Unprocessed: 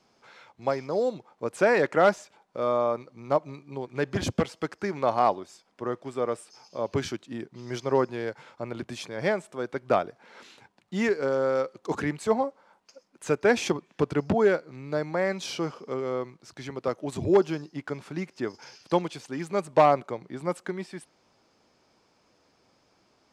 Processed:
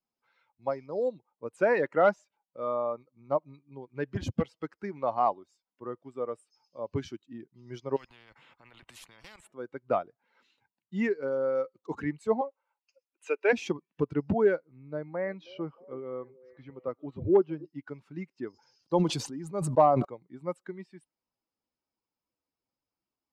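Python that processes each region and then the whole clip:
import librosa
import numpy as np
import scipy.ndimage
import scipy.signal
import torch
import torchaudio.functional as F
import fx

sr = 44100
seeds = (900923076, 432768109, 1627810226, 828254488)

y = fx.chain(x, sr, fx.level_steps(step_db=14),
    fx.peak_eq(hz=5400.0, db=-8.0, octaves=0.98),
    fx.spectral_comp(ratio=4.0), at=(7.96, 9.52))
y = fx.chain(y, sr, fx.highpass(hz=340.0, slope=24),
    fx.peak_eq(hz=2600.0, db=9.0, octaves=0.49), at=(12.41, 13.53))
y = fx.chain(y, sr, fx.air_absorb(metres=210.0),
    fx.echo_stepped(ms=317, hz=420.0, octaves=0.7, feedback_pct=70, wet_db=-11.5), at=(14.59, 17.65))
y = fx.chain(y, sr, fx.peak_eq(hz=2400.0, db=-7.0, octaves=1.3),
    fx.sustainer(db_per_s=35.0), at=(18.5, 20.05))
y = fx.bin_expand(y, sr, power=1.5)
y = fx.high_shelf(y, sr, hz=3200.0, db=-9.5)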